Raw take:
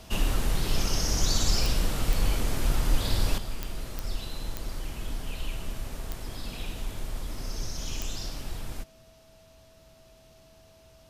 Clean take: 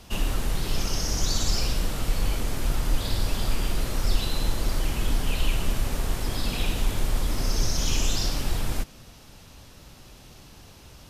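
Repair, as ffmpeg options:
-af "adeclick=t=4,bandreject=f=650:w=30,asetnsamples=n=441:p=0,asendcmd='3.38 volume volume 9.5dB',volume=1"

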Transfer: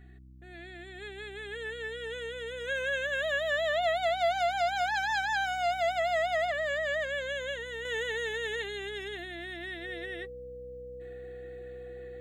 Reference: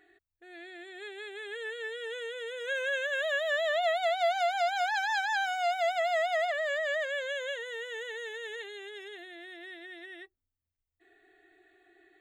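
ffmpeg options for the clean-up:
-af "bandreject=f=63.8:t=h:w=4,bandreject=f=127.6:t=h:w=4,bandreject=f=191.4:t=h:w=4,bandreject=f=255.2:t=h:w=4,bandreject=f=319:t=h:w=4,bandreject=f=490:w=30,asetnsamples=n=441:p=0,asendcmd='7.85 volume volume -6dB',volume=1"

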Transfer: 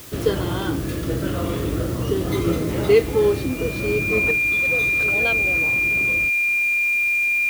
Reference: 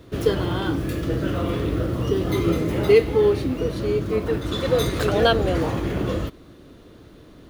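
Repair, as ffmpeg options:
-af "bandreject=f=2400:w=30,afwtdn=0.0089,asetnsamples=n=441:p=0,asendcmd='4.31 volume volume 9.5dB',volume=1"

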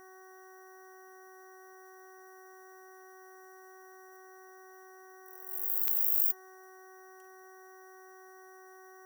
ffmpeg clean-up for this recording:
-af "adeclick=t=4,bandreject=f=375.4:t=h:w=4,bandreject=f=750.8:t=h:w=4,bandreject=f=1126.2:t=h:w=4,bandreject=f=1501.6:t=h:w=4,bandreject=f=1877:t=h:w=4,bandreject=f=5800:w=30,agate=range=0.0891:threshold=0.00501"

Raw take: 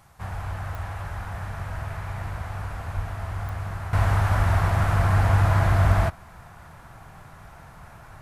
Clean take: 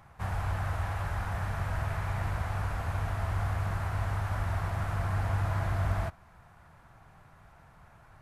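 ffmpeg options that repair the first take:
-filter_complex "[0:a]adeclick=t=4,asplit=3[s0][s1][s2];[s0]afade=t=out:st=2.95:d=0.02[s3];[s1]highpass=f=140:w=0.5412,highpass=f=140:w=1.3066,afade=t=in:st=2.95:d=0.02,afade=t=out:st=3.07:d=0.02[s4];[s2]afade=t=in:st=3.07:d=0.02[s5];[s3][s4][s5]amix=inputs=3:normalize=0,agate=range=0.0891:threshold=0.0126,asetnsamples=n=441:p=0,asendcmd='3.93 volume volume -10.5dB',volume=1"

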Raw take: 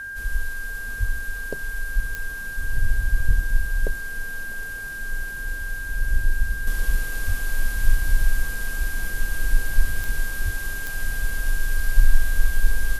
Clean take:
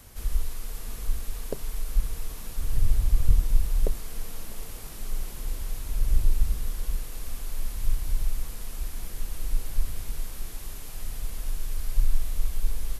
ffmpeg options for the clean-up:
-filter_complex "[0:a]adeclick=t=4,bandreject=f=1600:w=30,asplit=3[s0][s1][s2];[s0]afade=t=out:st=0.99:d=0.02[s3];[s1]highpass=f=140:w=0.5412,highpass=f=140:w=1.3066,afade=t=in:st=0.99:d=0.02,afade=t=out:st=1.11:d=0.02[s4];[s2]afade=t=in:st=1.11:d=0.02[s5];[s3][s4][s5]amix=inputs=3:normalize=0,asplit=3[s6][s7][s8];[s6]afade=t=out:st=7.26:d=0.02[s9];[s7]highpass=f=140:w=0.5412,highpass=f=140:w=1.3066,afade=t=in:st=7.26:d=0.02,afade=t=out:st=7.38:d=0.02[s10];[s8]afade=t=in:st=7.38:d=0.02[s11];[s9][s10][s11]amix=inputs=3:normalize=0,asplit=3[s12][s13][s14];[s12]afade=t=out:st=10.44:d=0.02[s15];[s13]highpass=f=140:w=0.5412,highpass=f=140:w=1.3066,afade=t=in:st=10.44:d=0.02,afade=t=out:st=10.56:d=0.02[s16];[s14]afade=t=in:st=10.56:d=0.02[s17];[s15][s16][s17]amix=inputs=3:normalize=0,asetnsamples=n=441:p=0,asendcmd='6.67 volume volume -6.5dB',volume=1"

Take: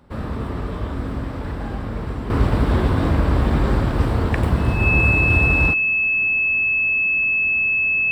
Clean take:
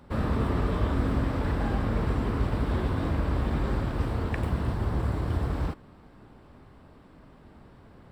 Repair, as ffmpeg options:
-af "bandreject=f=2600:w=30,asetnsamples=n=441:p=0,asendcmd='2.3 volume volume -9.5dB',volume=1"

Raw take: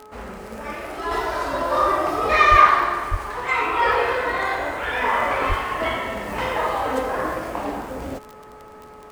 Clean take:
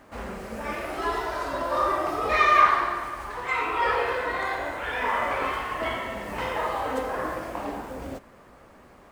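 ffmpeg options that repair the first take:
-filter_complex "[0:a]adeclick=t=4,bandreject=f=427.1:t=h:w=4,bandreject=f=854.2:t=h:w=4,bandreject=f=1281.3:t=h:w=4,asplit=3[s0][s1][s2];[s0]afade=t=out:st=2.5:d=0.02[s3];[s1]highpass=f=140:w=0.5412,highpass=f=140:w=1.3066,afade=t=in:st=2.5:d=0.02,afade=t=out:st=2.62:d=0.02[s4];[s2]afade=t=in:st=2.62:d=0.02[s5];[s3][s4][s5]amix=inputs=3:normalize=0,asplit=3[s6][s7][s8];[s6]afade=t=out:st=3.1:d=0.02[s9];[s7]highpass=f=140:w=0.5412,highpass=f=140:w=1.3066,afade=t=in:st=3.1:d=0.02,afade=t=out:st=3.22:d=0.02[s10];[s8]afade=t=in:st=3.22:d=0.02[s11];[s9][s10][s11]amix=inputs=3:normalize=0,asplit=3[s12][s13][s14];[s12]afade=t=out:st=5.48:d=0.02[s15];[s13]highpass=f=140:w=0.5412,highpass=f=140:w=1.3066,afade=t=in:st=5.48:d=0.02,afade=t=out:st=5.6:d=0.02[s16];[s14]afade=t=in:st=5.6:d=0.02[s17];[s15][s16][s17]amix=inputs=3:normalize=0,asetnsamples=n=441:p=0,asendcmd='1.11 volume volume -5dB',volume=1"

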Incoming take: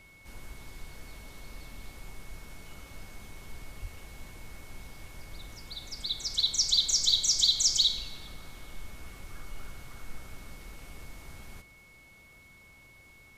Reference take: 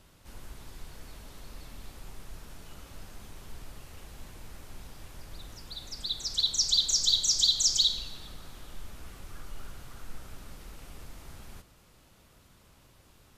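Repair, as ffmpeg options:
-filter_complex "[0:a]bandreject=f=2200:w=30,asplit=3[s0][s1][s2];[s0]afade=t=out:st=3.81:d=0.02[s3];[s1]highpass=f=140:w=0.5412,highpass=f=140:w=1.3066,afade=t=in:st=3.81:d=0.02,afade=t=out:st=3.93:d=0.02[s4];[s2]afade=t=in:st=3.93:d=0.02[s5];[s3][s4][s5]amix=inputs=3:normalize=0"

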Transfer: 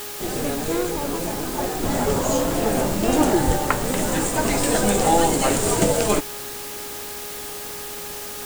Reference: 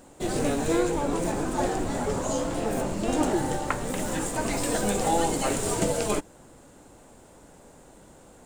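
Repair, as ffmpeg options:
-filter_complex "[0:a]bandreject=f=413.5:t=h:w=4,bandreject=f=827:t=h:w=4,bandreject=f=1240.5:t=h:w=4,bandreject=f=1654:t=h:w=4,asplit=3[s0][s1][s2];[s0]afade=t=out:st=3.46:d=0.02[s3];[s1]highpass=f=140:w=0.5412,highpass=f=140:w=1.3066,afade=t=in:st=3.46:d=0.02,afade=t=out:st=3.58:d=0.02[s4];[s2]afade=t=in:st=3.58:d=0.02[s5];[s3][s4][s5]amix=inputs=3:normalize=0,afwtdn=0.02,asetnsamples=n=441:p=0,asendcmd='1.83 volume volume -6.5dB',volume=1"

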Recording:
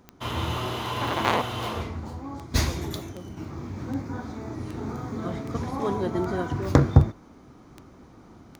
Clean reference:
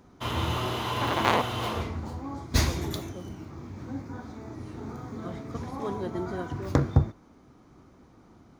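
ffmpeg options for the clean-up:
-af "adeclick=t=4,asetnsamples=n=441:p=0,asendcmd='3.37 volume volume -5.5dB',volume=1"

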